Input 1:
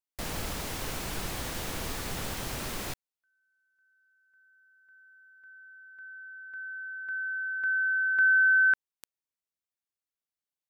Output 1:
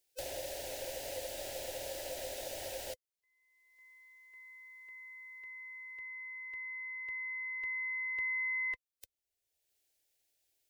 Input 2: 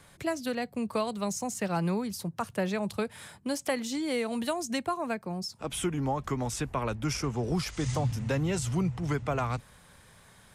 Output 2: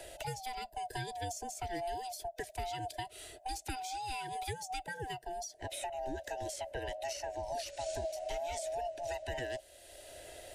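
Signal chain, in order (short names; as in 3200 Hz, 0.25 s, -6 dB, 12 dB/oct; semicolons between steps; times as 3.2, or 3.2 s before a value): band-swap scrambler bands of 500 Hz; fixed phaser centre 470 Hz, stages 4; three-band squash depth 70%; gain -5.5 dB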